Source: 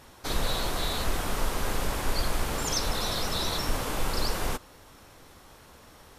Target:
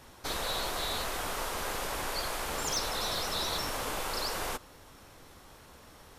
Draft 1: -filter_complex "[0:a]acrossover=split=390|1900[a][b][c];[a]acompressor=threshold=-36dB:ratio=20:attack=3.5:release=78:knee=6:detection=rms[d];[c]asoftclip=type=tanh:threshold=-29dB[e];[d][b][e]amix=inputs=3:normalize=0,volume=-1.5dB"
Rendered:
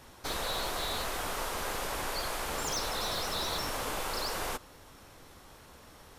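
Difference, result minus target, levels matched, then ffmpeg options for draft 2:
soft clip: distortion +8 dB
-filter_complex "[0:a]acrossover=split=390|1900[a][b][c];[a]acompressor=threshold=-36dB:ratio=20:attack=3.5:release=78:knee=6:detection=rms[d];[c]asoftclip=type=tanh:threshold=-22.5dB[e];[d][b][e]amix=inputs=3:normalize=0,volume=-1.5dB"

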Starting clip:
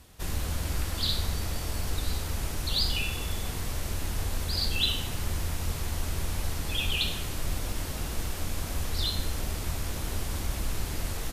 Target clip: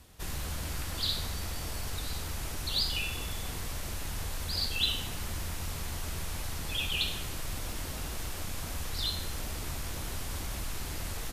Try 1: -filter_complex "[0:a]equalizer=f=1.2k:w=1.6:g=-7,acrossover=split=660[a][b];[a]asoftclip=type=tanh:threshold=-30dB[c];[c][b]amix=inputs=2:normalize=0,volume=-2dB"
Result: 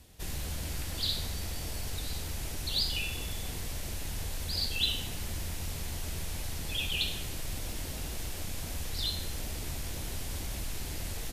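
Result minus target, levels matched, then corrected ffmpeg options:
1000 Hz band -4.0 dB
-filter_complex "[0:a]acrossover=split=660[a][b];[a]asoftclip=type=tanh:threshold=-30dB[c];[c][b]amix=inputs=2:normalize=0,volume=-2dB"

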